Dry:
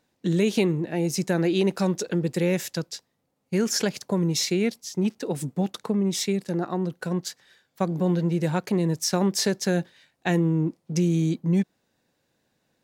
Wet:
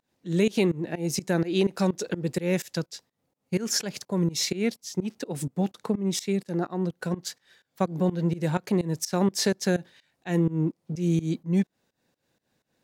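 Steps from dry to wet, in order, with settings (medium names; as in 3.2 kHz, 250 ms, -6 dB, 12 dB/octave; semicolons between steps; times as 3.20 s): volume shaper 126 bpm, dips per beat 2, -21 dB, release 195 ms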